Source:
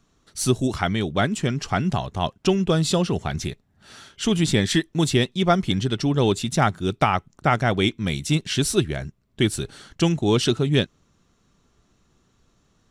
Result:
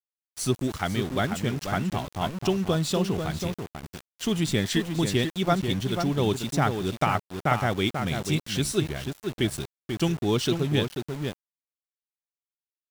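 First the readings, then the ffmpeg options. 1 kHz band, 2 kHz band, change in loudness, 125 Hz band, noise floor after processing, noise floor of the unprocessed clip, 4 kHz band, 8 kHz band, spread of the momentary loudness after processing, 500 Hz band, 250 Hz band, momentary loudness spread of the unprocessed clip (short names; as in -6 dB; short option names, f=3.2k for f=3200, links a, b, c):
-4.0 dB, -4.0 dB, -4.5 dB, -4.0 dB, under -85 dBFS, -65 dBFS, -4.5 dB, -5.0 dB, 8 LU, -4.0 dB, -4.0 dB, 8 LU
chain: -filter_complex "[0:a]asplit=2[a][b];[b]adelay=489.8,volume=-6dB,highshelf=f=4k:g=-11[c];[a][c]amix=inputs=2:normalize=0,aeval=exprs='val(0)*gte(abs(val(0)),0.0316)':c=same,volume=-5dB"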